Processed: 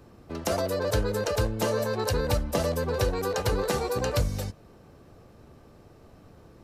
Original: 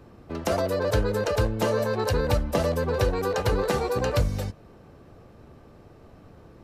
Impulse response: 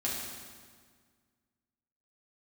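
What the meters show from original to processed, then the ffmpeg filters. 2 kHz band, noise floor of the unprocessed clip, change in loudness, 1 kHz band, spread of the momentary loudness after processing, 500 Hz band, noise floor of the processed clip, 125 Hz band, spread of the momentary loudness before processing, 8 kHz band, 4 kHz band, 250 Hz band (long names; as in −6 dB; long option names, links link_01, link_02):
−2.5 dB, −51 dBFS, −2.0 dB, −2.5 dB, 4 LU, −2.5 dB, −53 dBFS, −2.5 dB, 4 LU, +3.0 dB, +0.5 dB, −2.5 dB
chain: -af "bass=frequency=250:gain=0,treble=frequency=4000:gain=6,volume=-2.5dB"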